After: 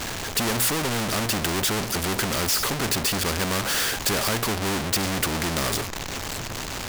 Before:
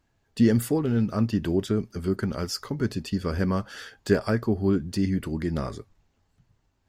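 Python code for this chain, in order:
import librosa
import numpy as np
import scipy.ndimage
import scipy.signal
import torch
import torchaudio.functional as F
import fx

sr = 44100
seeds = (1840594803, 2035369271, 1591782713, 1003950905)

y = fx.power_curve(x, sr, exponent=0.35)
y = fx.spectral_comp(y, sr, ratio=2.0)
y = y * librosa.db_to_amplitude(-2.5)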